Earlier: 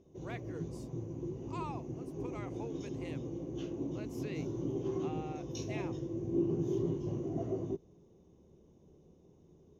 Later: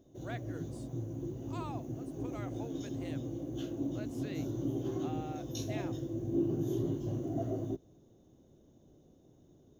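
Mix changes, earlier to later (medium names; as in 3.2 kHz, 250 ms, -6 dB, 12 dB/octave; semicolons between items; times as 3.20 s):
background: remove distance through air 88 m; master: remove rippled EQ curve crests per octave 0.8, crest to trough 8 dB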